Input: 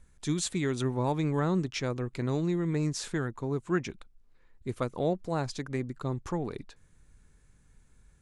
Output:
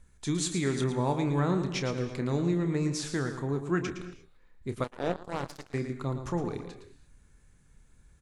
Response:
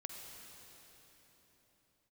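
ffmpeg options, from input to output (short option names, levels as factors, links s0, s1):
-filter_complex "[0:a]asplit=2[s0][s1];[s1]adelay=29,volume=0.299[s2];[s0][s2]amix=inputs=2:normalize=0,asplit=2[s3][s4];[1:a]atrim=start_sample=2205,afade=t=out:st=0.29:d=0.01,atrim=end_sample=13230,adelay=113[s5];[s4][s5]afir=irnorm=-1:irlink=0,volume=0.631[s6];[s3][s6]amix=inputs=2:normalize=0,asettb=1/sr,asplit=3[s7][s8][s9];[s7]atrim=end=4.844[s10];[s8]atrim=start=4.84:end=5.74,asetpts=PTS-STARTPTS,afade=t=in:d=0.004:c=qsin,afade=t=out:st=0.896:d=0.004:c=qsin,aeval=exprs='0.15*(cos(1*acos(clip(val(0)/0.15,-1,1)))-cos(1*PI/2))+0.0266*(cos(3*acos(clip(val(0)/0.15,-1,1)))-cos(3*PI/2))+0.0106*(cos(6*acos(clip(val(0)/0.15,-1,1)))-cos(6*PI/2))+0.00944*(cos(7*acos(clip(val(0)/0.15,-1,1)))-cos(7*PI/2))':c=same[s11];[s9]atrim=start=5.736[s12];[s10][s11]acrossfade=d=0.004:c1=hsin:c2=qsin[s13];[s13][s12]acrossfade=d=0.004:c1=qsin:c2=hsin"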